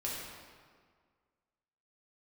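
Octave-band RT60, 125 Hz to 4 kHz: 1.8, 1.9, 1.8, 1.8, 1.5, 1.2 s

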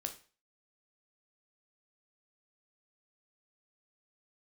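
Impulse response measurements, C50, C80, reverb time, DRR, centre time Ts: 12.0 dB, 17.0 dB, 0.40 s, 5.0 dB, 10 ms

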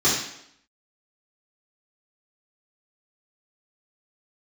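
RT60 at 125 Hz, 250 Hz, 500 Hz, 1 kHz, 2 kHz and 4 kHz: 0.60, 0.80, 0.75, 0.75, 0.70, 0.70 s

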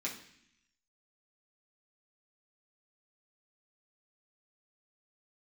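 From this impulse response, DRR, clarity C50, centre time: -5.0 dB, 8.5 dB, 24 ms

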